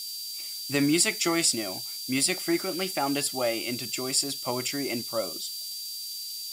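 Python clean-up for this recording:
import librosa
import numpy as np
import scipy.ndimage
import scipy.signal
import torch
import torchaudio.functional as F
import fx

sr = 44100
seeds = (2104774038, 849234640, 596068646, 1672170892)

y = fx.notch(x, sr, hz=4700.0, q=30.0)
y = fx.noise_reduce(y, sr, print_start_s=6.01, print_end_s=6.51, reduce_db=30.0)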